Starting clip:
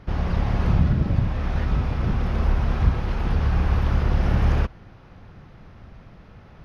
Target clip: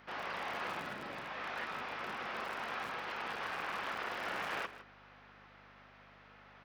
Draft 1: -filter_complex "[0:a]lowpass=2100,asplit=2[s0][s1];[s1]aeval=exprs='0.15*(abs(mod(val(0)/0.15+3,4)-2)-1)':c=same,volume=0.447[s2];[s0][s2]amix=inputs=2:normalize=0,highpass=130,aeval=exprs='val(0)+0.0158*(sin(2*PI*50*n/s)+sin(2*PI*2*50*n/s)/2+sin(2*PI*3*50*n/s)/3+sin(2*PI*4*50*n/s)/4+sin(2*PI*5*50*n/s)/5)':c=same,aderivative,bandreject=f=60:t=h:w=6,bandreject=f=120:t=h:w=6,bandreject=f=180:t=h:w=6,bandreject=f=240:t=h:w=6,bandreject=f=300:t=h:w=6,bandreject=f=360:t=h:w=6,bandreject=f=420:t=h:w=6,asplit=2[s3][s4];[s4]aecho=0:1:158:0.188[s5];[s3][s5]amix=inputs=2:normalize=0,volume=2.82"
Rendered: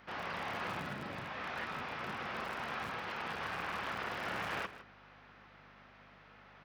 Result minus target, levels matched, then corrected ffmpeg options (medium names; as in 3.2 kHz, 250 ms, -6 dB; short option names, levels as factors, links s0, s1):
125 Hz band +7.5 dB
-filter_complex "[0:a]lowpass=2100,asplit=2[s0][s1];[s1]aeval=exprs='0.15*(abs(mod(val(0)/0.15+3,4)-2)-1)':c=same,volume=0.447[s2];[s0][s2]amix=inputs=2:normalize=0,highpass=270,aeval=exprs='val(0)+0.0158*(sin(2*PI*50*n/s)+sin(2*PI*2*50*n/s)/2+sin(2*PI*3*50*n/s)/3+sin(2*PI*4*50*n/s)/4+sin(2*PI*5*50*n/s)/5)':c=same,aderivative,bandreject=f=60:t=h:w=6,bandreject=f=120:t=h:w=6,bandreject=f=180:t=h:w=6,bandreject=f=240:t=h:w=6,bandreject=f=300:t=h:w=6,bandreject=f=360:t=h:w=6,bandreject=f=420:t=h:w=6,asplit=2[s3][s4];[s4]aecho=0:1:158:0.188[s5];[s3][s5]amix=inputs=2:normalize=0,volume=2.82"